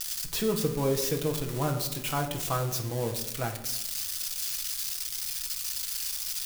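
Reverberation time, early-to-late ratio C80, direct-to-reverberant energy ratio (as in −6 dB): 0.90 s, 12.5 dB, 3.0 dB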